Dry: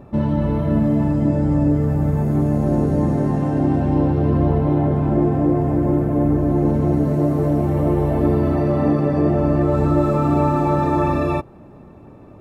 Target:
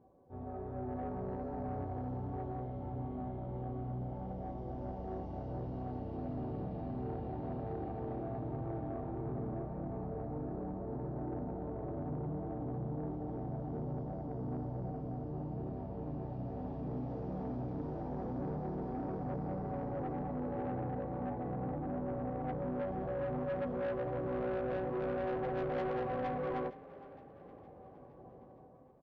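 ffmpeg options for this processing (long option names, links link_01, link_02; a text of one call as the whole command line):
ffmpeg -i in.wav -filter_complex "[0:a]dynaudnorm=framelen=110:gausssize=5:maxgain=11dB,bandpass=frequency=1700:width_type=q:width=2.8:csg=0,asoftclip=type=tanh:threshold=-29dB,asplit=6[link_01][link_02][link_03][link_04][link_05][link_06];[link_02]adelay=198,afreqshift=48,volume=-18dB[link_07];[link_03]adelay=396,afreqshift=96,volume=-23dB[link_08];[link_04]adelay=594,afreqshift=144,volume=-28.1dB[link_09];[link_05]adelay=792,afreqshift=192,volume=-33.1dB[link_10];[link_06]adelay=990,afreqshift=240,volume=-38.1dB[link_11];[link_01][link_07][link_08][link_09][link_10][link_11]amix=inputs=6:normalize=0,asetrate=18846,aresample=44100,volume=-3.5dB" out.wav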